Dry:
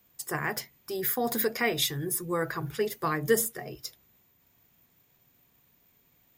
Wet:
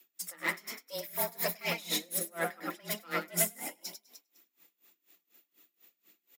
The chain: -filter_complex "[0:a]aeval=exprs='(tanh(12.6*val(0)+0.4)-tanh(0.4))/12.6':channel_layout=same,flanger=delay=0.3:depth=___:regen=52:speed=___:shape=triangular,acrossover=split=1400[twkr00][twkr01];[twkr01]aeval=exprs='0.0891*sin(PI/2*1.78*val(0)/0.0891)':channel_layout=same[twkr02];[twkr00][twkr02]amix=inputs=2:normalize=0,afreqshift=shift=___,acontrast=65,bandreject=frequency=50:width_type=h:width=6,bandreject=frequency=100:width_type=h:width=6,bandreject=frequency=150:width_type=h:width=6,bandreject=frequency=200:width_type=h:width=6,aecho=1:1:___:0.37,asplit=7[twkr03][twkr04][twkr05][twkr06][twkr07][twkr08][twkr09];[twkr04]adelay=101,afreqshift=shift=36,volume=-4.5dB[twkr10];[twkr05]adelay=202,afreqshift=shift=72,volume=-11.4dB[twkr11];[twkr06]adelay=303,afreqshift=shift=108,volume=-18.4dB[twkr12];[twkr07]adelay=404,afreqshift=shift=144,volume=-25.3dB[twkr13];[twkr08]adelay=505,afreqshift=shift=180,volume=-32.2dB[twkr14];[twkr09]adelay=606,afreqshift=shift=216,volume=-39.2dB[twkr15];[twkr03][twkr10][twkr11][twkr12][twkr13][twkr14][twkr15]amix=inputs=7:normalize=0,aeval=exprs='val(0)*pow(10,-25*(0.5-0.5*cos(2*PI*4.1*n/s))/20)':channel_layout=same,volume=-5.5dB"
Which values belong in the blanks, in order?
3.4, 1.8, 170, 6